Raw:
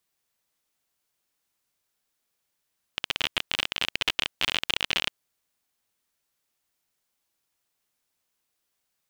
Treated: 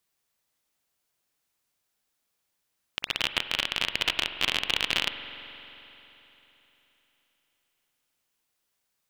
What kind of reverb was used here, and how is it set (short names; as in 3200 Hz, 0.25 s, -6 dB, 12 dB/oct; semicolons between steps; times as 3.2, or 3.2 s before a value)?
spring tank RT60 3.6 s, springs 44 ms, chirp 65 ms, DRR 9 dB